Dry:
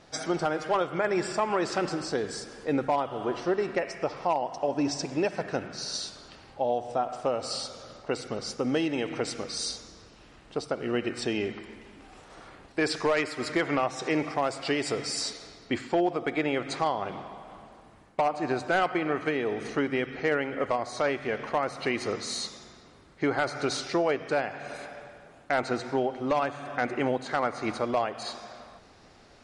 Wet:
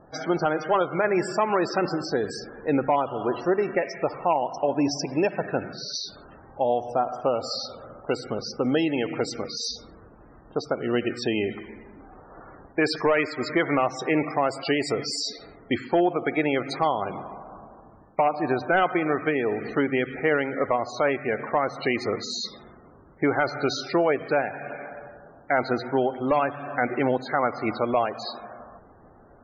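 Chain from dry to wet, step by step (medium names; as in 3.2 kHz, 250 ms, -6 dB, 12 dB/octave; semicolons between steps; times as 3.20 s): level-controlled noise filter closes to 1.2 kHz, open at -27 dBFS; loudest bins only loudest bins 64; trim +4 dB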